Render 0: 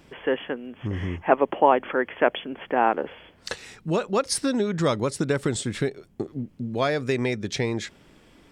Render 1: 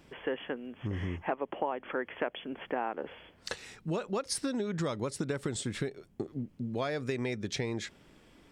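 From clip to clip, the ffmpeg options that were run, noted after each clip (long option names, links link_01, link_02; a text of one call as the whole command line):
ffmpeg -i in.wav -af "acompressor=threshold=-24dB:ratio=6,volume=-5dB" out.wav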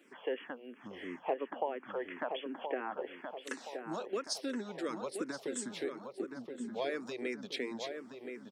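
ffmpeg -i in.wav -filter_complex "[0:a]highpass=frequency=240:width=0.5412,highpass=frequency=240:width=1.3066,asplit=2[link_01][link_02];[link_02]adelay=1023,lowpass=frequency=2200:poles=1,volume=-6dB,asplit=2[link_03][link_04];[link_04]adelay=1023,lowpass=frequency=2200:poles=1,volume=0.5,asplit=2[link_05][link_06];[link_06]adelay=1023,lowpass=frequency=2200:poles=1,volume=0.5,asplit=2[link_07][link_08];[link_08]adelay=1023,lowpass=frequency=2200:poles=1,volume=0.5,asplit=2[link_09][link_10];[link_10]adelay=1023,lowpass=frequency=2200:poles=1,volume=0.5,asplit=2[link_11][link_12];[link_12]adelay=1023,lowpass=frequency=2200:poles=1,volume=0.5[link_13];[link_01][link_03][link_05][link_07][link_09][link_11][link_13]amix=inputs=7:normalize=0,asplit=2[link_14][link_15];[link_15]afreqshift=-2.9[link_16];[link_14][link_16]amix=inputs=2:normalize=1,volume=-1dB" out.wav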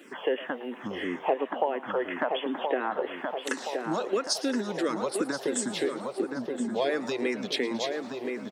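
ffmpeg -i in.wav -filter_complex "[0:a]bandreject=frequency=2300:width=15,asplit=2[link_01][link_02];[link_02]acompressor=threshold=-43dB:ratio=6,volume=3dB[link_03];[link_01][link_03]amix=inputs=2:normalize=0,asplit=7[link_04][link_05][link_06][link_07][link_08][link_09][link_10];[link_05]adelay=111,afreqshift=120,volume=-18dB[link_11];[link_06]adelay=222,afreqshift=240,volume=-21.7dB[link_12];[link_07]adelay=333,afreqshift=360,volume=-25.5dB[link_13];[link_08]adelay=444,afreqshift=480,volume=-29.2dB[link_14];[link_09]adelay=555,afreqshift=600,volume=-33dB[link_15];[link_10]adelay=666,afreqshift=720,volume=-36.7dB[link_16];[link_04][link_11][link_12][link_13][link_14][link_15][link_16]amix=inputs=7:normalize=0,volume=5.5dB" out.wav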